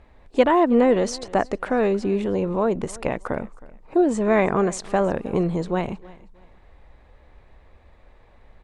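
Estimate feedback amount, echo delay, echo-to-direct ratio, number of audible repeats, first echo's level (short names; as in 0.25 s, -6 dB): 27%, 0.317 s, -21.0 dB, 2, -21.5 dB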